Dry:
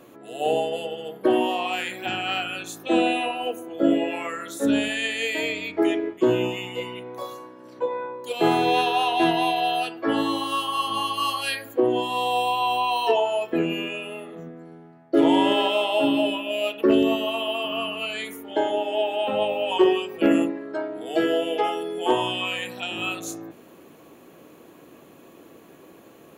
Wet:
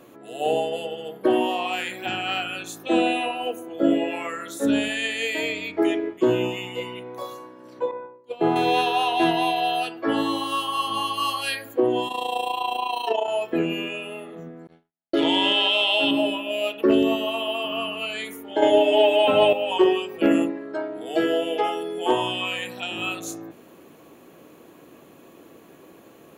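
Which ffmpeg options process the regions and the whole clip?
-filter_complex "[0:a]asettb=1/sr,asplit=3[s0][s1][s2];[s0]atrim=end=7.914[s3];[s1]atrim=start=7.91:end=8.56,asetpts=PTS-STARTPTS,afade=t=in:d=0.004:c=qsin,afade=t=out:st=0.646:d=0.004:c=qsin,agate=range=0.0224:threshold=0.0447:ratio=3:release=100:detection=peak,lowpass=f=1000:p=1[s4];[s2]atrim=start=8.556[s5];[s3][s4]acrossfade=d=0.004:c1=hsin:c2=qsin[s6];[s6][s5]acrossfade=d=0.004:c1=qsin:c2=hsin,asettb=1/sr,asplit=3[s7][s8][s9];[s7]atrim=end=12.084[s10];[s8]atrim=start=12.08:end=13.28,asetpts=PTS-STARTPTS,afade=t=in:d=0.004:c=qsin,afade=t=out:st=1.196:d=0.004:c=qsin,highpass=f=160:w=0.5412,highpass=f=160:w=1.3066,tremolo=f=28:d=0.75[s11];[s9]atrim=start=13.276[s12];[s10][s11]acrossfade=d=0.004:c1=hsin:c2=qsin[s13];[s13][s12]acrossfade=d=0.004:c1=qsin:c2=hsin,asettb=1/sr,asplit=3[s14][s15][s16];[s14]atrim=end=14.674[s17];[s15]atrim=start=14.67:end=16.11,asetpts=PTS-STARTPTS,afade=t=in:d=0.004:c=qsin,afade=t=out:st=1.436:d=0.004:c=qsin,agate=range=0.00355:threshold=0.00708:ratio=16:release=100:detection=peak,equalizer=f=3500:t=o:w=1.7:g=14.5,acompressor=threshold=0.158:ratio=6:attack=3.2:release=140:knee=1:detection=peak[s18];[s16]atrim=start=16.106[s19];[s17][s18]acrossfade=d=0.004:c1=hsin:c2=qsin[s20];[s20][s19]acrossfade=d=0.004:c1=qsin:c2=hsin,asettb=1/sr,asplit=3[s21][s22][s23];[s21]atrim=end=18.624[s24];[s22]atrim=start=18.62:end=19.53,asetpts=PTS-STARTPTS,afade=t=in:d=0.004:c=qsin,afade=t=out:st=0.906:d=0.004:c=qsin,aecho=1:1:6.8:0.85,atrim=end_sample=40131,acontrast=42[s25];[s23]atrim=start=19.526[s26];[s24][s25]acrossfade=d=0.004:c1=hsin:c2=qsin[s27];[s27][s26]acrossfade=d=0.004:c1=qsin:c2=hsin"

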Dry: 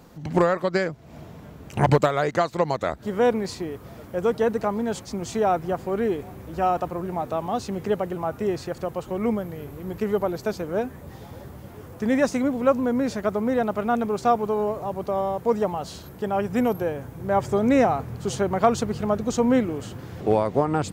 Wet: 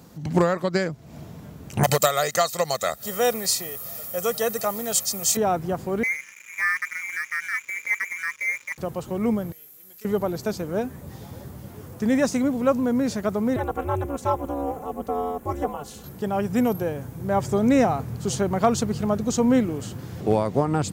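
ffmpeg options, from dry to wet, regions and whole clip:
-filter_complex "[0:a]asettb=1/sr,asplit=3[s0][s1][s2];[s0]atrim=end=1.834[s3];[s1]atrim=start=1.83:end=5.37,asetpts=PTS-STARTPTS,afade=t=in:d=0.004:c=qsin,afade=t=out:st=3.536:d=0.004:c=qsin,aemphasis=mode=production:type=riaa,aecho=1:1:1.6:0.61,atrim=end_sample=156114[s4];[s2]atrim=start=5.366[s5];[s3][s4]acrossfade=d=0.004:c1=hsin:c2=qsin[s6];[s6][s5]acrossfade=d=0.004:c1=qsin:c2=hsin,asettb=1/sr,asplit=3[s7][s8][s9];[s7]atrim=end=6.034[s10];[s8]atrim=start=6.03:end=8.78,asetpts=PTS-STARTPTS,afade=t=in:d=0.004:c=qsin,afade=t=out:st=2.746:d=0.004:c=qsin,lowpass=f=2100:t=q:w=0.5098,lowpass=f=2100:t=q:w=0.6013,lowpass=f=2100:t=q:w=0.9,lowpass=f=2100:t=q:w=2.563,afreqshift=-2500,aeval=exprs='sgn(val(0))*max(abs(val(0))-0.00841,0)':c=same,asuperstop=centerf=710:order=4:qfactor=2.9[s11];[s9]atrim=start=8.776[s12];[s10][s11]acrossfade=d=0.004:c1=hsin:c2=qsin[s13];[s13][s12]acrossfade=d=0.004:c1=qsin:c2=hsin,asettb=1/sr,asplit=3[s14][s15][s16];[s14]atrim=end=9.524[s17];[s15]atrim=start=9.52:end=10.05,asetpts=PTS-STARTPTS,afade=t=in:d=0.004:c=qsin,afade=t=out:st=0.526:d=0.004:c=qsin,asuperstop=centerf=1000:order=4:qfactor=4.5,aderivative,aeval=exprs='clip(val(0),-1,0.00794)':c=same[s18];[s16]atrim=start=10.046[s19];[s17][s18]acrossfade=d=0.004:c1=hsin:c2=qsin[s20];[s20][s19]acrossfade=d=0.004:c1=qsin:c2=hsin,asettb=1/sr,asplit=3[s21][s22][s23];[s21]atrim=end=13.564[s24];[s22]atrim=start=13.56:end=16.04,asetpts=PTS-STARTPTS,afade=t=in:d=0.004:c=qsin,afade=t=out:st=2.476:d=0.004:c=qsin,aecho=1:1:3.2:0.72,atrim=end_sample=109368,aeval=exprs='val(0)*sin(2*PI*140*n/s)':c=same,equalizer=f=4600:t=o:w=0.82:g=-9.5[s25];[s23]atrim=start=16.036[s26];[s24][s25]acrossfade=d=0.004:c1=hsin:c2=qsin[s27];[s27][s26]acrossfade=d=0.004:c1=qsin:c2=hsin,highpass=f=130:p=1,bass=f=250:g=8,treble=f=4000:g=7,volume=0.841"

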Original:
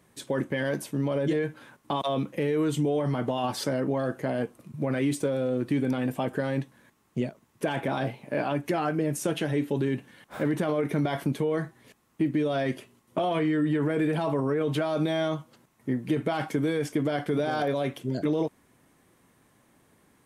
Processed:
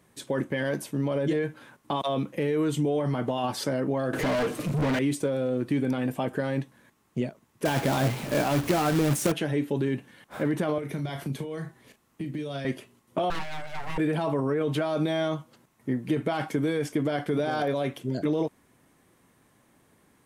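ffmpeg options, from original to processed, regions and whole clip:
-filter_complex "[0:a]asettb=1/sr,asplit=3[s0][s1][s2];[s0]atrim=end=4.134[s3];[s1]atrim=start=4.13:end=4.99,asetpts=PTS-STARTPTS,afade=t=in:d=0.004:c=qsin,afade=t=out:st=0.856:d=0.004:c=qsin,equalizer=f=990:w=0.6:g=-13.5,aecho=1:1:6.7:0.46,atrim=end_sample=37926,asplit=2[s4][s5];[s5]highpass=f=720:p=1,volume=126,asoftclip=type=tanh:threshold=0.119[s6];[s4][s6]amix=inputs=2:normalize=0,lowpass=f=2000:p=1,volume=0.501[s7];[s2]atrim=start=4.986[s8];[s3][s7]acrossfade=d=0.004:c1=hsin:c2=qsin[s9];[s9][s8]acrossfade=d=0.004:c1=qsin:c2=hsin,asettb=1/sr,asplit=3[s10][s11][s12];[s10]atrim=end=7.654[s13];[s11]atrim=start=7.65:end=9.32,asetpts=PTS-STARTPTS,afade=t=in:d=0.004:c=qsin,afade=t=out:st=1.666:d=0.004:c=qsin,aeval=exprs='val(0)+0.5*0.02*sgn(val(0))':c=same,equalizer=f=68:w=0.41:g=7,acrusher=bits=2:mode=log:mix=0:aa=0.000001[s14];[s12]atrim=start=9.316[s15];[s13][s14]acrossfade=d=0.004:c1=hsin:c2=qsin[s16];[s16][s15]acrossfade=d=0.004:c1=qsin:c2=hsin,asettb=1/sr,asplit=3[s17][s18][s19];[s17]atrim=end=10.784[s20];[s18]atrim=start=10.78:end=12.65,asetpts=PTS-STARTPTS,afade=t=in:d=0.004:c=qsin,afade=t=out:st=1.866:d=0.004:c=qsin,acrossover=split=150|3000[s21][s22][s23];[s22]acompressor=threshold=0.0158:ratio=3:attack=3.2:release=140:knee=2.83:detection=peak[s24];[s21][s24][s23]amix=inputs=3:normalize=0,asplit=2[s25][s26];[s26]adelay=36,volume=0.316[s27];[s25][s27]amix=inputs=2:normalize=0,atrim=end_sample=82467[s28];[s19]atrim=start=12.646[s29];[s20][s28]acrossfade=d=0.004:c1=hsin:c2=qsin[s30];[s30][s29]acrossfade=d=0.004:c1=qsin:c2=hsin,asettb=1/sr,asplit=3[s31][s32][s33];[s31]atrim=end=13.304[s34];[s32]atrim=start=13.3:end=13.98,asetpts=PTS-STARTPTS,afade=t=in:d=0.004:c=qsin,afade=t=out:st=0.676:d=0.004:c=qsin,highpass=f=400:w=0.5412,highpass=f=400:w=1.3066,aeval=exprs='abs(val(0))':c=same[s35];[s33]atrim=start=13.976[s36];[s34][s35]acrossfade=d=0.004:c1=hsin:c2=qsin[s37];[s37][s36]acrossfade=d=0.004:c1=qsin:c2=hsin"

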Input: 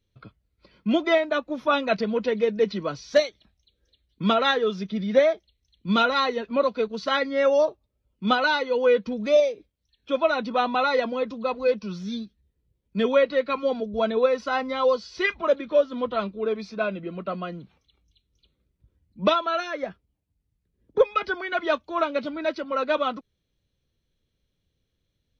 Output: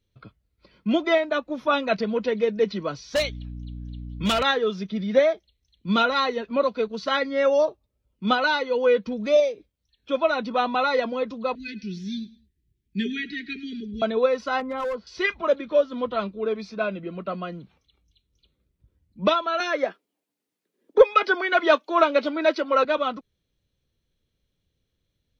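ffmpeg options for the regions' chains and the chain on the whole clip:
-filter_complex "[0:a]asettb=1/sr,asplit=3[s0][s1][s2];[s0]atrim=end=3.154[s3];[s1]atrim=start=3.15:end=4.43,asetpts=PTS-STARTPTS,afade=t=in:d=0.004:c=qsin,afade=t=out:st=1.276:d=0.004:c=qsin,aeval=exprs='val(0)+0.02*(sin(2*PI*60*n/s)+sin(2*PI*2*60*n/s)/2+sin(2*PI*3*60*n/s)/3+sin(2*PI*4*60*n/s)/4+sin(2*PI*5*60*n/s)/5)':c=same,equalizer=f=2800:w=1.6:g=9.5,volume=8.41,asoftclip=hard,volume=0.119[s4];[s2]atrim=start=4.426[s5];[s3][s4]acrossfade=d=0.004:c1=hsin:c2=qsin[s6];[s6][s5]acrossfade=d=0.004:c1=qsin:c2=hsin,asettb=1/sr,asplit=3[s7][s8][s9];[s7]atrim=end=11.554[s10];[s8]atrim=start=11.55:end=14.02,asetpts=PTS-STARTPTS,afade=t=in:d=0.004:c=qsin,afade=t=out:st=2.466:d=0.004:c=qsin,asuperstop=centerf=800:order=20:qfactor=0.68,aecho=1:1:104|208:0.112|0.0325,atrim=end_sample=108927[s11];[s9]atrim=start=14.016[s12];[s10][s11]acrossfade=d=0.004:c1=hsin:c2=qsin[s13];[s13][s12]acrossfade=d=0.004:c1=qsin:c2=hsin,asettb=1/sr,asplit=3[s14][s15][s16];[s14]atrim=end=14.604[s17];[s15]atrim=start=14.6:end=15.07,asetpts=PTS-STARTPTS,afade=t=in:d=0.004:c=qsin,afade=t=out:st=0.466:d=0.004:c=qsin,lowpass=1600,acompressor=threshold=0.0631:ratio=2.5:attack=3.2:release=140:knee=1:detection=peak,asoftclip=type=hard:threshold=0.0596[s18];[s16]atrim=start=15.066[s19];[s17][s18]acrossfade=d=0.004:c1=hsin:c2=qsin[s20];[s20][s19]acrossfade=d=0.004:c1=qsin:c2=hsin,asettb=1/sr,asplit=3[s21][s22][s23];[s21]atrim=end=19.604[s24];[s22]atrim=start=19.6:end=22.85,asetpts=PTS-STARTPTS,afade=t=in:d=0.004:c=qsin,afade=t=out:st=3.246:d=0.004:c=qsin,highpass=f=280:w=0.5412,highpass=f=280:w=1.3066,acontrast=57[s25];[s23]atrim=start=22.846[s26];[s24][s25]acrossfade=d=0.004:c1=hsin:c2=qsin[s27];[s27][s26]acrossfade=d=0.004:c1=qsin:c2=hsin"

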